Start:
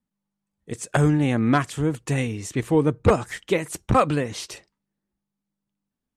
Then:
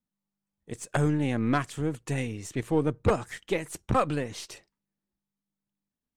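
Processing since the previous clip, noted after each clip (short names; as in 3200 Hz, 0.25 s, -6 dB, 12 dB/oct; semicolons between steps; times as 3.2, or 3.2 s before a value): half-wave gain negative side -3 dB; gain -5 dB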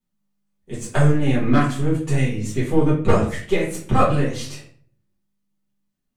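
shoebox room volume 48 m³, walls mixed, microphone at 1.6 m; gain -1.5 dB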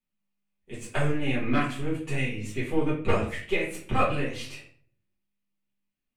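fifteen-band EQ 160 Hz -6 dB, 2500 Hz +10 dB, 6300 Hz -4 dB; gain -7.5 dB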